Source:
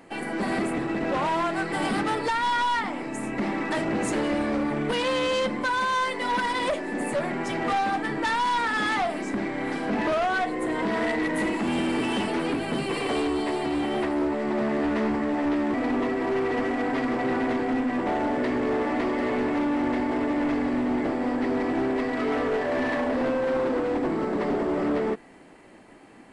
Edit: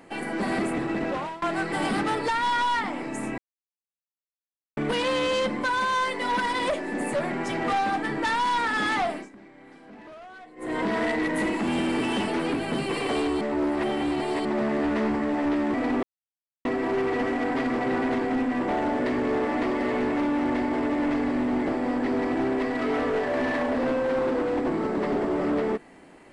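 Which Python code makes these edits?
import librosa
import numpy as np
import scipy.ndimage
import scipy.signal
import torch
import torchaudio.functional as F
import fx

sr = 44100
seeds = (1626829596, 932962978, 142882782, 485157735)

y = fx.edit(x, sr, fx.fade_out_to(start_s=1.01, length_s=0.41, floor_db=-22.5),
    fx.silence(start_s=3.38, length_s=1.39),
    fx.fade_down_up(start_s=9.09, length_s=1.67, db=-20.0, fade_s=0.2),
    fx.reverse_span(start_s=13.41, length_s=1.04),
    fx.insert_silence(at_s=16.03, length_s=0.62), tone=tone)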